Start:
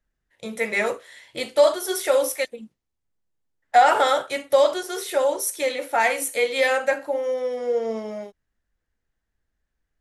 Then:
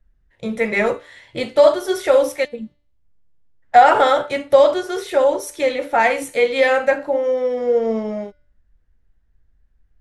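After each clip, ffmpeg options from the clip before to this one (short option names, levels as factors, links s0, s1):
-af "aemphasis=mode=reproduction:type=bsi,bandreject=f=292.8:t=h:w=4,bandreject=f=585.6:t=h:w=4,bandreject=f=878.4:t=h:w=4,bandreject=f=1171.2:t=h:w=4,bandreject=f=1464:t=h:w=4,bandreject=f=1756.8:t=h:w=4,bandreject=f=2049.6:t=h:w=4,bandreject=f=2342.4:t=h:w=4,bandreject=f=2635.2:t=h:w=4,bandreject=f=2928:t=h:w=4,bandreject=f=3220.8:t=h:w=4,bandreject=f=3513.6:t=h:w=4,bandreject=f=3806.4:t=h:w=4,bandreject=f=4099.2:t=h:w=4,bandreject=f=4392:t=h:w=4,bandreject=f=4684.8:t=h:w=4,bandreject=f=4977.6:t=h:w=4,bandreject=f=5270.4:t=h:w=4,volume=1.68"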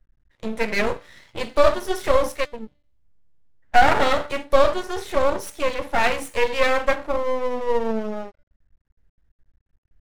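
-af "aeval=exprs='max(val(0),0)':c=same"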